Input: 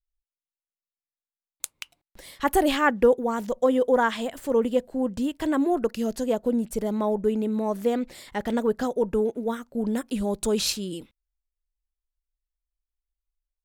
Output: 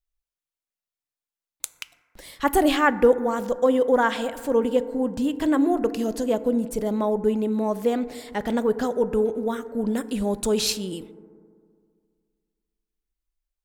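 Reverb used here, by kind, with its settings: FDN reverb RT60 2.1 s, low-frequency decay 1.05×, high-frequency decay 0.25×, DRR 13.5 dB; trim +1.5 dB

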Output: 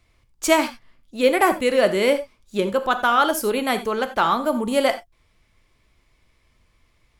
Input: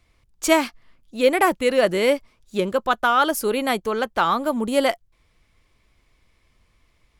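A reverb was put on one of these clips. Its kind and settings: gated-style reverb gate 110 ms flat, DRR 9 dB

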